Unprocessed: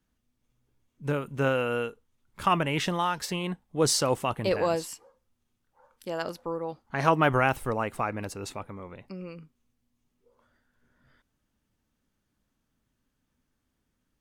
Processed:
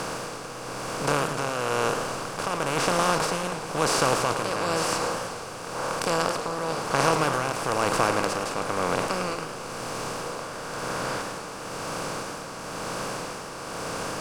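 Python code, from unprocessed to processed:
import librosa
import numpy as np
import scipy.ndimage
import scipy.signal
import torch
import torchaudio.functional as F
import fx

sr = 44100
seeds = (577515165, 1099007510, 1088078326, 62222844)

y = fx.bin_compress(x, sr, power=0.2)
y = y * (1.0 - 0.54 / 2.0 + 0.54 / 2.0 * np.cos(2.0 * np.pi * 1.0 * (np.arange(len(y)) / sr)))
y = fx.echo_warbled(y, sr, ms=108, feedback_pct=66, rate_hz=2.8, cents=188, wet_db=-10.5)
y = y * librosa.db_to_amplitude(-5.5)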